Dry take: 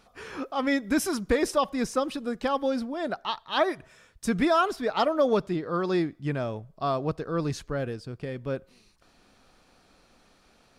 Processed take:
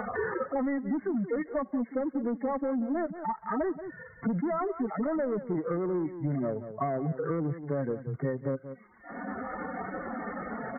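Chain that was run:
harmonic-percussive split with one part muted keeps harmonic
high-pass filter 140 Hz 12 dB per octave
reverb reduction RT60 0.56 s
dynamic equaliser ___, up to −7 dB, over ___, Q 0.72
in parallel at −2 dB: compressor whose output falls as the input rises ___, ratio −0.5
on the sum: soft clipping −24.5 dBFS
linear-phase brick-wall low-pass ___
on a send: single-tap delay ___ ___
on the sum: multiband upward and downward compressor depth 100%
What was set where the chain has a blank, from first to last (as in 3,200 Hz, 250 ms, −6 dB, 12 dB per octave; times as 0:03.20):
1,200 Hz, −43 dBFS, −33 dBFS, 2,200 Hz, 180 ms, −14.5 dB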